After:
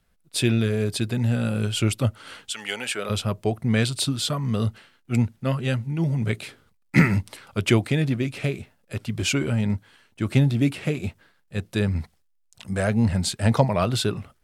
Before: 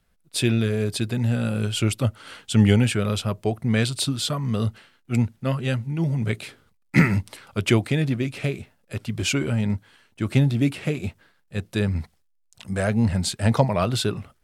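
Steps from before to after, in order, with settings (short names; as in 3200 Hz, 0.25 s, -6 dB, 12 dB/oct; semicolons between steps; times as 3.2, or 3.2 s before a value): 2.51–3.09 HPF 1400 Hz -> 380 Hz 12 dB/oct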